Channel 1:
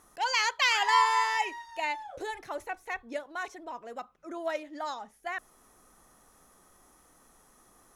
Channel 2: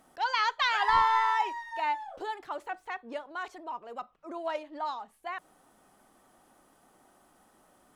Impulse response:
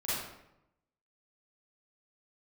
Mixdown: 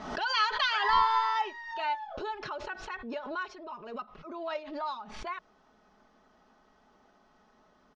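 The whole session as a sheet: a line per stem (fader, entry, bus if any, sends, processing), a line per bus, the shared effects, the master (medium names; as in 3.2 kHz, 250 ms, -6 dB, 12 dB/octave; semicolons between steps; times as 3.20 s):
-8.5 dB, 0.00 s, no send, none
-3.5 dB, 1.1 ms, no send, comb 4.7 ms, depth 71%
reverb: none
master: steep low-pass 5.4 kHz 36 dB/octave; swell ahead of each attack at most 62 dB/s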